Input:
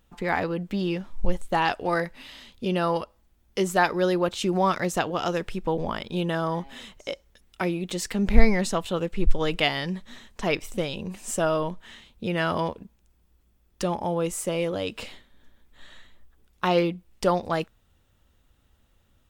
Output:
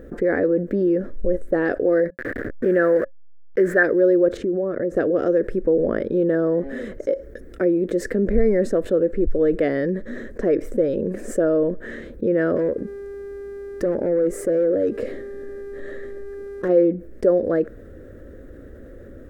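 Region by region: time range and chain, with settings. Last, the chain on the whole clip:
2.1–3.83 level-crossing sampler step -35.5 dBFS + bell 1700 Hz +15 dB 0.91 oct
4.37–4.96 LPF 1000 Hz 6 dB/oct + compressor 2.5:1, threshold -34 dBFS
12.55–16.68 notch 1500 Hz, Q 10 + buzz 400 Hz, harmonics 31, -58 dBFS -5 dB/oct + overloaded stage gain 26.5 dB
whole clip: EQ curve 180 Hz 0 dB, 290 Hz +12 dB, 540 Hz +14 dB, 880 Hz -17 dB, 1700 Hz +3 dB, 2800 Hz -22 dB, 5200 Hz -18 dB, 11000 Hz -16 dB; fast leveller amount 50%; gain -7.5 dB

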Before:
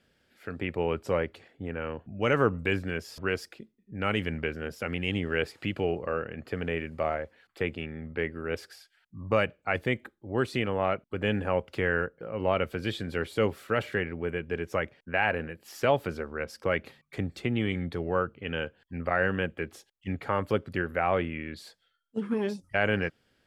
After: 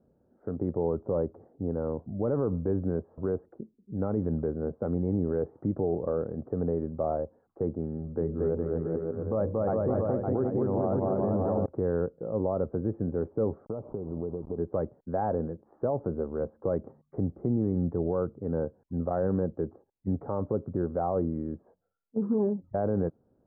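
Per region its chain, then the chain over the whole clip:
7.97–11.66 notches 60/120/180/240/300/360/420/480/540 Hz + bouncing-ball echo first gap 0.23 s, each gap 0.8×, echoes 5, each echo -2 dB
13.65–14.58 level-crossing sampler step -41 dBFS + compressor, threshold -33 dBFS + Butterworth band-stop 1800 Hz, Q 1.4
whole clip: Bessel low-pass 590 Hz, order 8; low shelf 61 Hz -9 dB; limiter -25.5 dBFS; gain +6.5 dB

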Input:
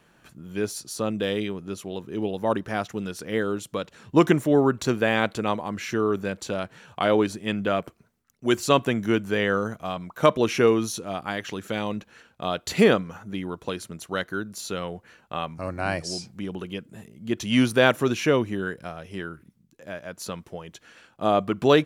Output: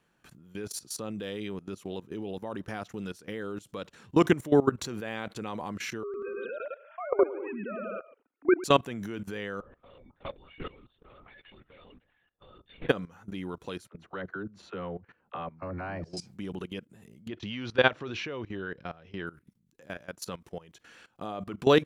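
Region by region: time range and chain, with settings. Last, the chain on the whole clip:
6.03–8.64 sine-wave speech + bouncing-ball echo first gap 0.11 s, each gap 0.75×, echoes 5
9.6–12.89 metallic resonator 260 Hz, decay 0.25 s, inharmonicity 0.03 + LPC vocoder at 8 kHz whisper
13.88–16.17 LPF 1900 Hz + dispersion lows, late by 45 ms, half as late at 460 Hz
17.28–19.27 LPF 4600 Hz 24 dB/oct + dynamic EQ 200 Hz, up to -6 dB, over -32 dBFS, Q 1.2
whole clip: notch 630 Hz, Q 15; level quantiser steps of 18 dB

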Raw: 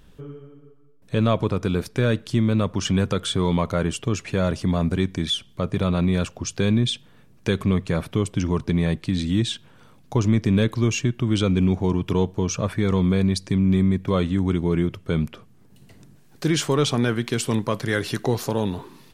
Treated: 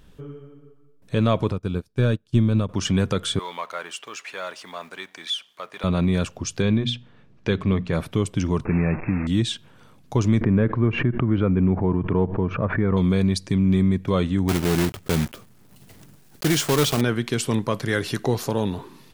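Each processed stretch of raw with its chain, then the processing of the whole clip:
1.52–2.69 low shelf 150 Hz +8 dB + notch 2000 Hz, Q 5.8 + upward expander 2.5:1, over -31 dBFS
3.39–5.84 G.711 law mismatch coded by mu + HPF 970 Hz + high shelf 4500 Hz -8 dB
6.62–7.93 LPF 4100 Hz + notches 60/120/180/240/300 Hz
8.65–9.27 delta modulation 64 kbps, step -25 dBFS + brick-wall FIR low-pass 2700 Hz
10.41–12.97 LPF 1900 Hz 24 dB/oct + backwards sustainer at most 93 dB/s
14.48–17.03 block floating point 3-bit + high shelf 8000 Hz +3.5 dB
whole clip: dry

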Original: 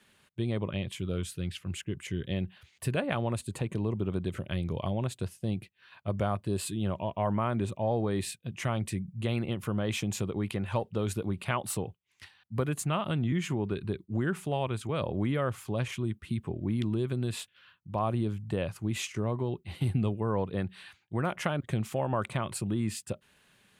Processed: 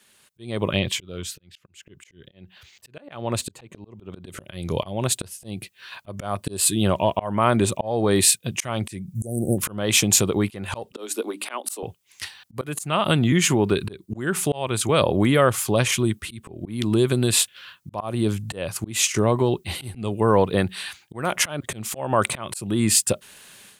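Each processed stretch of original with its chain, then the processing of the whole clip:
0.79–4.26 bell 10000 Hz -14 dB 0.63 oct + auto swell 0.639 s
9.15–9.58 brick-wall FIR band-stop 800–5700 Hz + tone controls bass +2 dB, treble +11 dB
10.92–11.83 steep high-pass 230 Hz 72 dB/oct + notches 50/100/150/200/250/300 Hz + upward expander, over -40 dBFS
whole clip: tone controls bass -6 dB, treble +10 dB; auto swell 0.3 s; AGC gain up to 12 dB; gain +2 dB

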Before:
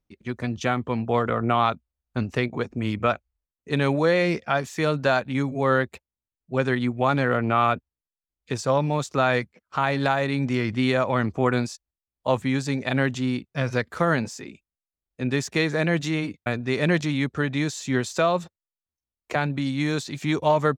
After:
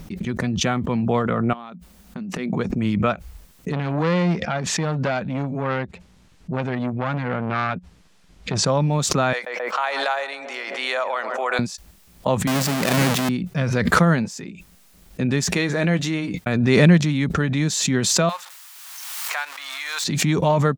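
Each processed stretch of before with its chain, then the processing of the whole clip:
1.53–2.52 resonant low shelf 150 Hz -7 dB, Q 3 + compressor 8:1, threshold -34 dBFS
3.72–8.66 air absorption 75 m + core saturation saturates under 1300 Hz
9.33–11.59 HPF 570 Hz 24 dB/oct + darkening echo 0.133 s, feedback 80%, low-pass 1200 Hz, level -14.5 dB
12.47–13.29 half-waves squared off + HPF 430 Hz 6 dB/oct + sustainer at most 30 dB/s
15.5–16.45 bell 170 Hz -5.5 dB 1.1 oct + doubler 16 ms -12 dB
18.29–20.04 zero-crossing step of -31.5 dBFS + HPF 920 Hz 24 dB/oct
whole clip: bell 180 Hz +12 dB 0.53 oct; backwards sustainer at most 29 dB/s

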